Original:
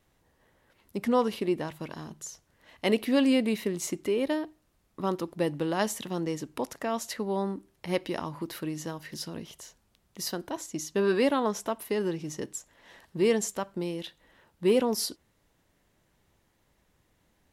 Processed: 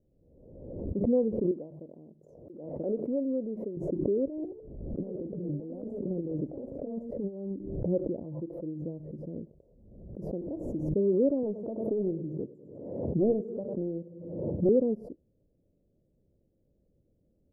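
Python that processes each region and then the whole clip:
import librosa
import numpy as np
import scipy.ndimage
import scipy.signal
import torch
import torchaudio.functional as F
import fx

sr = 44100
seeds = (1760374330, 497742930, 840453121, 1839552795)

y = fx.chain(x, sr, fx.highpass(hz=640.0, slope=6),
    fx.echo_single(ms=986, db=-14.0), at=(1.51, 3.77))
y = fx.chain(y, sr, fx.over_compress(threshold_db=-34.0, ratio=-0.5),
    fx.echo_pitch(ms=103, semitones=3, count=2, db_per_echo=-6.0), at=(4.27, 7.52))
y = fx.chain(y, sr, fx.low_shelf(hz=400.0, db=-10.5),
    fx.comb(ms=5.9, depth=0.69), at=(8.23, 8.82))
y = fx.chain(y, sr, fx.delta_mod(bps=64000, step_db=-34.5),
    fx.high_shelf(hz=5300.0, db=12.0), at=(10.4, 10.89))
y = fx.chain(y, sr, fx.highpass(hz=86.0, slope=24),
    fx.echo_feedback(ms=100, feedback_pct=52, wet_db=-16.5),
    fx.doppler_dist(depth_ms=0.58), at=(11.43, 14.69))
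y = scipy.signal.sosfilt(scipy.signal.ellip(4, 1.0, 60, 560.0, 'lowpass', fs=sr, output='sos'), y)
y = fx.pre_swell(y, sr, db_per_s=47.0)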